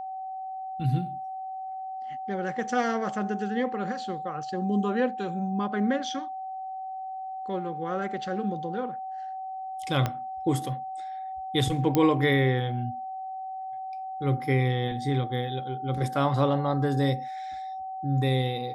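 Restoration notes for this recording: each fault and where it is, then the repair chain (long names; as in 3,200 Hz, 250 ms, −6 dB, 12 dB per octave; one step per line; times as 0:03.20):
whistle 760 Hz −33 dBFS
0:10.06: click −13 dBFS
0:11.95: click −10 dBFS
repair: click removal
notch filter 760 Hz, Q 30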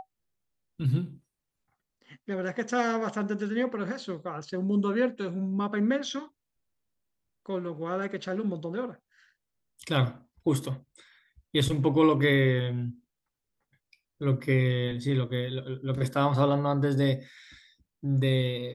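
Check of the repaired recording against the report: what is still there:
0:10.06: click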